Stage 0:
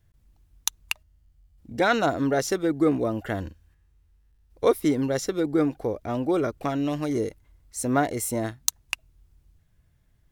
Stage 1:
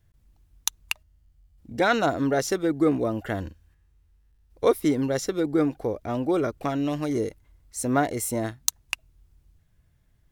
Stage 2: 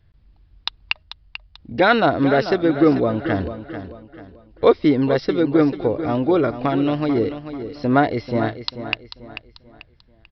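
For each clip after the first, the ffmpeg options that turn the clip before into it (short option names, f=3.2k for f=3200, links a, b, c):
-af anull
-filter_complex "[0:a]asplit=2[a][b];[b]aecho=0:1:440|880|1320|1760:0.282|0.101|0.0365|0.0131[c];[a][c]amix=inputs=2:normalize=0,aresample=11025,aresample=44100,volume=6.5dB"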